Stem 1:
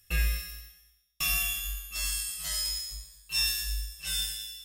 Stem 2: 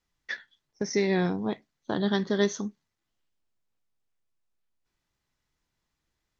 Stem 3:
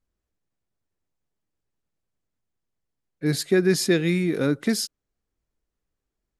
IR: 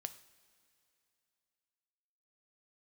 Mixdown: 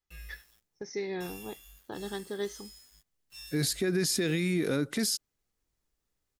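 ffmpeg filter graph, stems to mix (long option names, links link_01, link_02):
-filter_complex "[0:a]aeval=exprs='val(0)*gte(abs(val(0)),0.0133)':channel_layout=same,volume=-19.5dB[link_01];[1:a]aecho=1:1:2.4:0.42,volume=-11dB[link_02];[2:a]highshelf=frequency=3500:gain=8.5,adelay=300,volume=-2dB[link_03];[link_01][link_02][link_03]amix=inputs=3:normalize=0,alimiter=limit=-20dB:level=0:latency=1:release=37"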